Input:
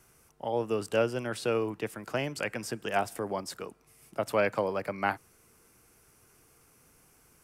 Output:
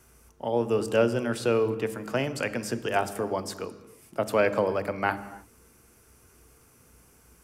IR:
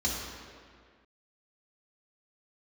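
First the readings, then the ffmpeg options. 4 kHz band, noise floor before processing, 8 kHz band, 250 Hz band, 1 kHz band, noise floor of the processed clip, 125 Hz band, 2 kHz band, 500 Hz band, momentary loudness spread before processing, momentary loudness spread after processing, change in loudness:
+2.5 dB, −63 dBFS, +3.0 dB, +5.5 dB, +2.5 dB, −59 dBFS, +5.0 dB, +3.0 dB, +4.5 dB, 12 LU, 12 LU, +4.0 dB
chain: -filter_complex "[0:a]asplit=2[link_01][link_02];[1:a]atrim=start_sample=2205,afade=type=out:start_time=0.37:duration=0.01,atrim=end_sample=16758,lowshelf=frequency=330:gain=8.5[link_03];[link_02][link_03]afir=irnorm=-1:irlink=0,volume=-19.5dB[link_04];[link_01][link_04]amix=inputs=2:normalize=0,volume=3dB"

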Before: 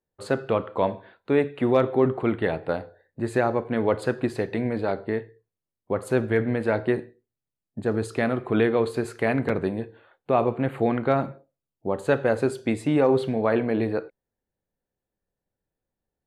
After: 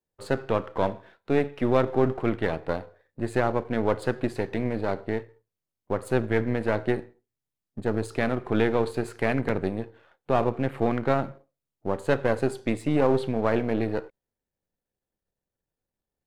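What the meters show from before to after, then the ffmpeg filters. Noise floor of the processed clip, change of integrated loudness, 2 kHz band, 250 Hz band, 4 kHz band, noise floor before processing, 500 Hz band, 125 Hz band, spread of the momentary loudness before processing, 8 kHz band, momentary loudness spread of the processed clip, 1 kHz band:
below −85 dBFS, −2.0 dB, −1.5 dB, −2.0 dB, −0.5 dB, below −85 dBFS, −2.5 dB, −0.5 dB, 9 LU, −2.0 dB, 9 LU, −1.0 dB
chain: -af "aeval=exprs='if(lt(val(0),0),0.447*val(0),val(0))':channel_layout=same"

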